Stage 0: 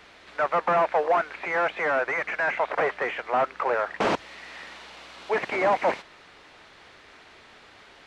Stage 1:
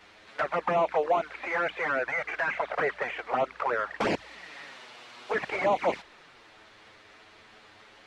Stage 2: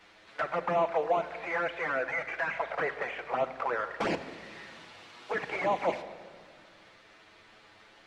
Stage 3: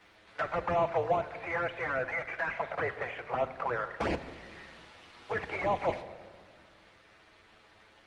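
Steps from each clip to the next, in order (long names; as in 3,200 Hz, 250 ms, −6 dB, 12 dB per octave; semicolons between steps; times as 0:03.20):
flanger swept by the level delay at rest 10.6 ms, full sweep at −18.5 dBFS
convolution reverb RT60 1.9 s, pre-delay 6 ms, DRR 9 dB; level −3.5 dB
sub-octave generator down 2 octaves, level −3 dB; surface crackle 140 per second −62 dBFS; level −1 dB; Opus 32 kbit/s 48,000 Hz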